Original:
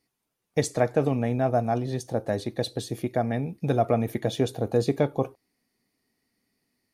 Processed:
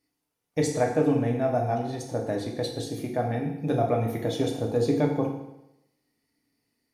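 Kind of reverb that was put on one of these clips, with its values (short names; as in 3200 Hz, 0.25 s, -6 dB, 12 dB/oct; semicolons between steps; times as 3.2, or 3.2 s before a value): FDN reverb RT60 0.87 s, low-frequency decay 0.95×, high-frequency decay 0.95×, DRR 0 dB; gain -4 dB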